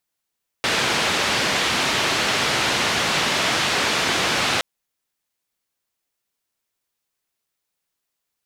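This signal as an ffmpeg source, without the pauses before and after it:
ffmpeg -f lavfi -i "anoisesrc=color=white:duration=3.97:sample_rate=44100:seed=1,highpass=frequency=94,lowpass=frequency=3700,volume=-8.7dB" out.wav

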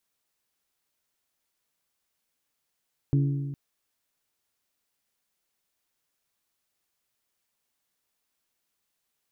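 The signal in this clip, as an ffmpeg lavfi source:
ffmpeg -f lavfi -i "aevalsrc='0.119*pow(10,-3*t/1.69)*sin(2*PI*140*t)+0.0501*pow(10,-3*t/1.373)*sin(2*PI*280*t)+0.0211*pow(10,-3*t/1.3)*sin(2*PI*336*t)+0.00891*pow(10,-3*t/1.215)*sin(2*PI*420*t)':duration=0.41:sample_rate=44100" out.wav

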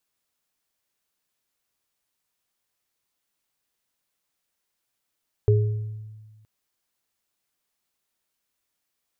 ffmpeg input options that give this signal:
ffmpeg -f lavfi -i "aevalsrc='0.2*pow(10,-3*t/1.5)*sin(2*PI*108*t)+0.126*pow(10,-3*t/0.65)*sin(2*PI*416*t)':duration=0.97:sample_rate=44100" out.wav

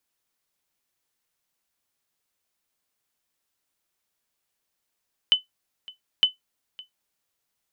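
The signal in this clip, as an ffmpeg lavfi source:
ffmpeg -f lavfi -i "aevalsrc='0.355*(sin(2*PI*3020*mod(t,0.91))*exp(-6.91*mod(t,0.91)/0.14)+0.0708*sin(2*PI*3020*max(mod(t,0.91)-0.56,0))*exp(-6.91*max(mod(t,0.91)-0.56,0)/0.14))':duration=1.82:sample_rate=44100" out.wav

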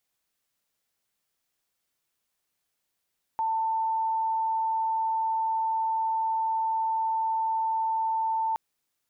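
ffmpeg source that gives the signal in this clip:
ffmpeg -f lavfi -i "sine=frequency=892:duration=5.17:sample_rate=44100,volume=-5.94dB" out.wav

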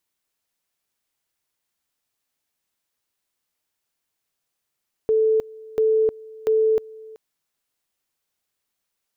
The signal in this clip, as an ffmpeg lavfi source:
ffmpeg -f lavfi -i "aevalsrc='pow(10,(-15-22.5*gte(mod(t,0.69),0.31))/20)*sin(2*PI*439*t)':duration=2.07:sample_rate=44100" out.wav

